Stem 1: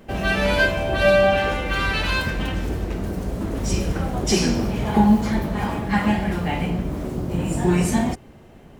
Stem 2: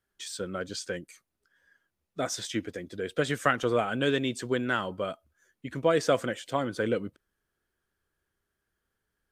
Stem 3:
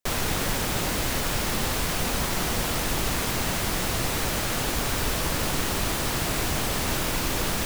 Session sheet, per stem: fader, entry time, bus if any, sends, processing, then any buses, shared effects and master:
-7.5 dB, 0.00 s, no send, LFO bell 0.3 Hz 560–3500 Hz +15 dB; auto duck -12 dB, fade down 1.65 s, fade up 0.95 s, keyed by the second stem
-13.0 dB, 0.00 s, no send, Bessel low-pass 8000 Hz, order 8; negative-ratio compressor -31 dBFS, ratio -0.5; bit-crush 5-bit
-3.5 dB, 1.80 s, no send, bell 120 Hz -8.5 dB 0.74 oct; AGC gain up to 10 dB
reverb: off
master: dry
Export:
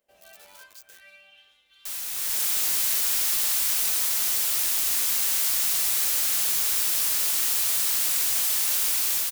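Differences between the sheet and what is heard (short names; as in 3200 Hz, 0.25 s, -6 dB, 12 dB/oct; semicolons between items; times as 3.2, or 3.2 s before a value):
stem 1 -7.5 dB -> -18.5 dB; master: extra pre-emphasis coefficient 0.97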